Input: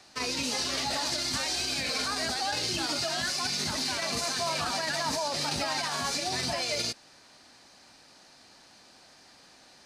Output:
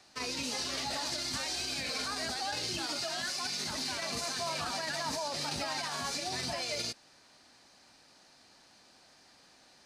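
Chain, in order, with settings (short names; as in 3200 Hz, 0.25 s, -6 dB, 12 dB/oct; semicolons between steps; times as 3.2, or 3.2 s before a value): 2.8–3.71 low shelf 130 Hz -10 dB; gain -5 dB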